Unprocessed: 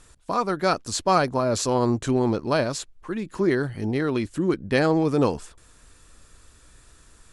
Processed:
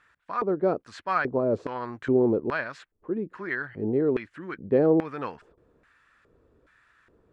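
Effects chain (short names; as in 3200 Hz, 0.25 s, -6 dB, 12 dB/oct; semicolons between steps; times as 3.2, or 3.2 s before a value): tone controls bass +10 dB, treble -9 dB; LFO band-pass square 1.2 Hz 440–1700 Hz; gain +3 dB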